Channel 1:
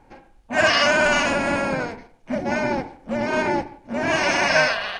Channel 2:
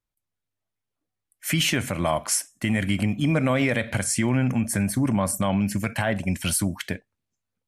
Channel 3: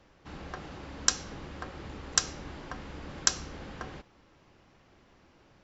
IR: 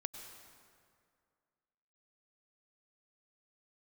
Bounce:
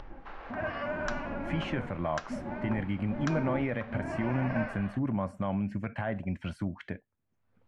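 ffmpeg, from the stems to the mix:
-filter_complex "[0:a]aemphasis=mode=reproduction:type=bsi,flanger=delay=2.4:depth=9.7:regen=65:speed=0.63:shape=sinusoidal,volume=0.251[s0];[1:a]volume=0.398[s1];[2:a]highpass=720,volume=0.841[s2];[s0][s1][s2]amix=inputs=3:normalize=0,lowpass=1700,acompressor=mode=upward:threshold=0.02:ratio=2.5"

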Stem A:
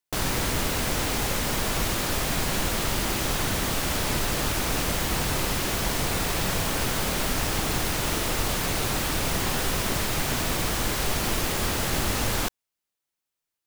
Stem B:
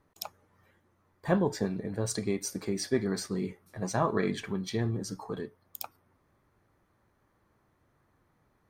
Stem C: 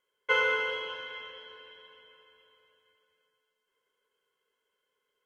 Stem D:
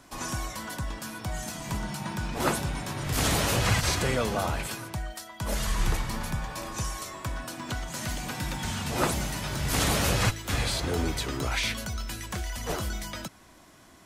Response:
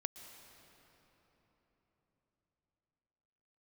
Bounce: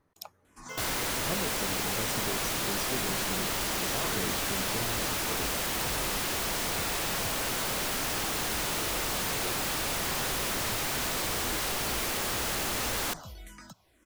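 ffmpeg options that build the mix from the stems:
-filter_complex "[0:a]lowshelf=f=210:g=-11,asoftclip=type=hard:threshold=0.0316,adelay=650,volume=1.12[s0];[1:a]acompressor=threshold=0.0158:ratio=2,volume=0.75[s1];[2:a]acrusher=bits=5:mix=0:aa=0.000001,adelay=400,volume=0.141[s2];[3:a]acompressor=threshold=0.0398:ratio=6,asplit=2[s3][s4];[s4]afreqshift=-2[s5];[s3][s5]amix=inputs=2:normalize=1,adelay=450,volume=0.355[s6];[s0][s1][s2][s6]amix=inputs=4:normalize=0"

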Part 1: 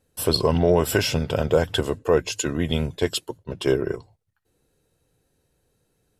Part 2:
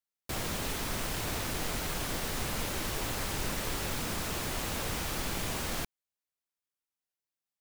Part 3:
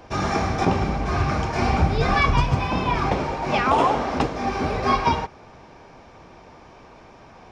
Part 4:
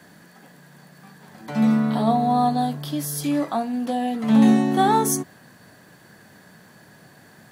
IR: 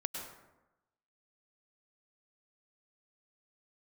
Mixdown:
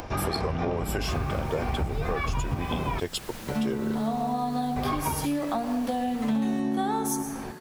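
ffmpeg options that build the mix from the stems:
-filter_complex "[0:a]volume=0.794,asplit=2[s0][s1];[1:a]adelay=750,volume=0.422[s2];[2:a]acrossover=split=3900[s3][s4];[s4]acompressor=threshold=0.00224:ratio=4:attack=1:release=60[s5];[s3][s5]amix=inputs=2:normalize=0,lowshelf=f=80:g=7,acompressor=mode=upward:threshold=0.0282:ratio=2.5,volume=0.891,asplit=3[s6][s7][s8];[s6]atrim=end=3,asetpts=PTS-STARTPTS,afade=t=out:st=2.996:d=0.004:c=hsin[s9];[s7]atrim=start=3:end=4.76,asetpts=PTS-STARTPTS,volume=0[s10];[s8]atrim=start=4.76,asetpts=PTS-STARTPTS,afade=t=in:d=0.004:c=hsin[s11];[s9][s10][s11]concat=n=3:v=0:a=1[s12];[3:a]adelay=2000,volume=0.891,asplit=2[s13][s14];[s14]volume=0.668[s15];[s1]apad=whole_len=419755[s16];[s13][s16]sidechaincompress=threshold=0.0158:ratio=8:attack=16:release=753[s17];[4:a]atrim=start_sample=2205[s18];[s15][s18]afir=irnorm=-1:irlink=0[s19];[s0][s2][s12][s17][s19]amix=inputs=5:normalize=0,acompressor=threshold=0.0562:ratio=6"

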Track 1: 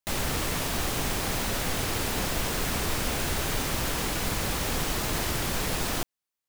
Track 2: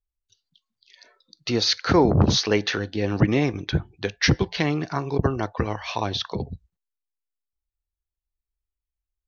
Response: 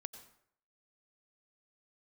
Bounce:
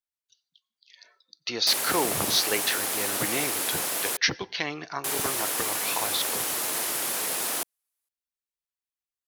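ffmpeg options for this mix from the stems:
-filter_complex "[0:a]highpass=380,equalizer=f=11000:t=o:w=0.87:g=11.5,adelay=1600,volume=0.841,asplit=3[s0][s1][s2];[s0]atrim=end=4.17,asetpts=PTS-STARTPTS,afade=t=out:st=4.166:d=0.004:c=hsin[s3];[s1]atrim=start=4.17:end=5.04,asetpts=PTS-STARTPTS,volume=0[s4];[s2]atrim=start=5.04,asetpts=PTS-STARTPTS,afade=t=in:d=0.004:c=hsin[s5];[s3][s4][s5]concat=n=3:v=0:a=1[s6];[1:a]highpass=f=1100:p=1,volume=0.794,asplit=2[s7][s8];[s8]volume=0.266[s9];[2:a]atrim=start_sample=2205[s10];[s9][s10]afir=irnorm=-1:irlink=0[s11];[s6][s7][s11]amix=inputs=3:normalize=0"

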